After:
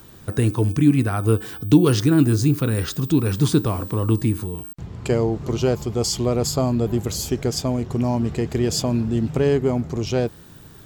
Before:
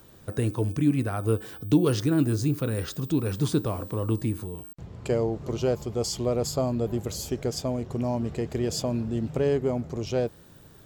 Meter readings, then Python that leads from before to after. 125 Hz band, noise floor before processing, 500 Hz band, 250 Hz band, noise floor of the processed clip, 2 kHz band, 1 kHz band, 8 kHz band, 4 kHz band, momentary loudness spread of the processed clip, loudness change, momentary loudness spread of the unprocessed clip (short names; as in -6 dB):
+7.5 dB, -51 dBFS, +4.5 dB, +7.0 dB, -44 dBFS, +7.5 dB, +6.0 dB, +7.5 dB, +7.5 dB, 7 LU, +6.5 dB, 7 LU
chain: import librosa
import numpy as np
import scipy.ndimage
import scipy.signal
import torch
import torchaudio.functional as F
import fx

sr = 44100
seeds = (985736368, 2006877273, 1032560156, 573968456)

y = fx.peak_eq(x, sr, hz=560.0, db=-6.0, octaves=0.64)
y = F.gain(torch.from_numpy(y), 7.5).numpy()